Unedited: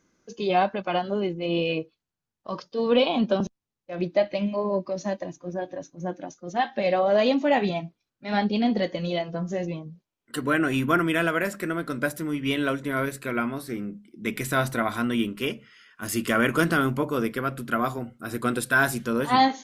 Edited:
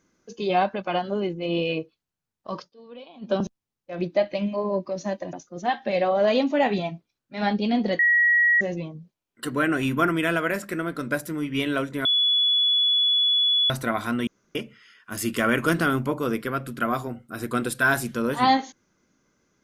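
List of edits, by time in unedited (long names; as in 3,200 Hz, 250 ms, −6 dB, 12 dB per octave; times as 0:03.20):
0:02.61–0:03.34: duck −22.5 dB, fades 0.13 s
0:05.33–0:06.24: remove
0:08.90–0:09.52: beep over 1,910 Hz −15.5 dBFS
0:12.96–0:14.61: beep over 3,410 Hz −17.5 dBFS
0:15.18–0:15.46: fill with room tone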